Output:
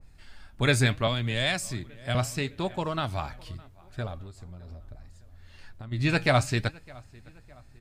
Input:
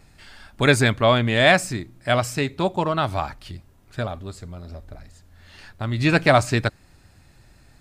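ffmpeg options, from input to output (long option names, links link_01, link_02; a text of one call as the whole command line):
ffmpeg -i in.wav -filter_complex "[0:a]lowshelf=frequency=120:gain=10.5,asplit=3[link_01][link_02][link_03];[link_01]afade=type=out:start_time=4.23:duration=0.02[link_04];[link_02]acompressor=threshold=-30dB:ratio=6,afade=type=in:start_time=4.23:duration=0.02,afade=type=out:start_time=5.91:duration=0.02[link_05];[link_03]afade=type=in:start_time=5.91:duration=0.02[link_06];[link_04][link_05][link_06]amix=inputs=3:normalize=0,flanger=delay=1.8:depth=6.7:regen=76:speed=0.72:shape=sinusoidal,asplit=2[link_07][link_08];[link_08]adelay=610,lowpass=frequency=4700:poles=1,volume=-24dB,asplit=2[link_09][link_10];[link_10]adelay=610,lowpass=frequency=4700:poles=1,volume=0.49,asplit=2[link_11][link_12];[link_12]adelay=610,lowpass=frequency=4700:poles=1,volume=0.49[link_13];[link_09][link_11][link_13]amix=inputs=3:normalize=0[link_14];[link_07][link_14]amix=inputs=2:normalize=0,asettb=1/sr,asplit=3[link_15][link_16][link_17];[link_15]atrim=end=1.074[link_18];[link_16]atrim=start=1.07:end=2.15,asetpts=PTS-STARTPTS,afade=type=in:duration=0.004:curve=qsin,afade=type=out:start_time=1.076:duration=0.004:curve=qsin,acrossover=split=140|3000[link_19][link_20][link_21];[link_20]acompressor=threshold=-27dB:ratio=2.5[link_22];[link_19][link_22][link_21]amix=inputs=3:normalize=0[link_23];[link_17]atrim=start=2.146[link_24];[link_18][link_23]acrossfade=duration=0.004:curve1=hsin:curve2=qsin[link_25];[link_25][link_24]acrossfade=duration=0.004:curve1=qsin:curve2=hsin,adynamicequalizer=threshold=0.0178:dfrequency=1800:dqfactor=0.7:tfrequency=1800:tqfactor=0.7:attack=5:release=100:ratio=0.375:range=2.5:mode=boostabove:tftype=highshelf,volume=-4.5dB" out.wav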